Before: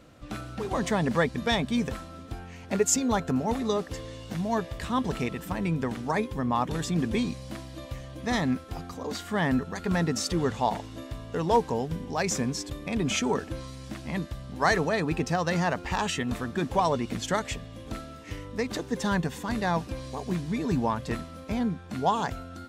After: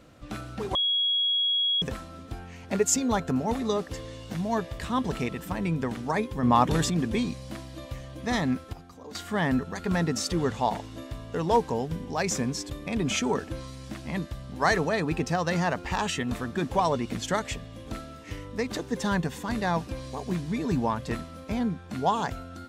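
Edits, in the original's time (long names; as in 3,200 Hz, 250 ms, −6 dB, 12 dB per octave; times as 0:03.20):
0:00.75–0:01.82: beep over 3,320 Hz −22 dBFS
0:06.43–0:06.90: clip gain +6 dB
0:08.73–0:09.15: clip gain −9.5 dB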